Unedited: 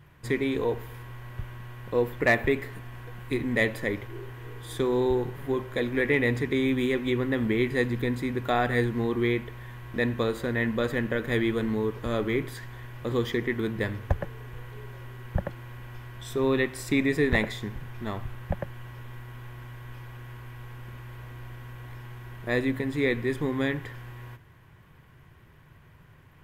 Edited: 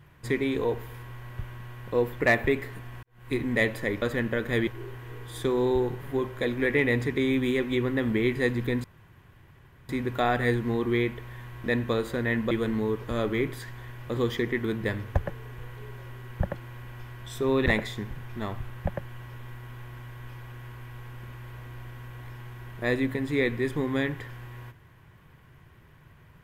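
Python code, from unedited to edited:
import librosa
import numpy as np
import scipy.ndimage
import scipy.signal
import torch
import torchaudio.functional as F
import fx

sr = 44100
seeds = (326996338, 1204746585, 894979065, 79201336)

y = fx.edit(x, sr, fx.fade_in_span(start_s=3.03, length_s=0.3, curve='qua'),
    fx.insert_room_tone(at_s=8.19, length_s=1.05),
    fx.move(start_s=10.81, length_s=0.65, to_s=4.02),
    fx.cut(start_s=16.61, length_s=0.7), tone=tone)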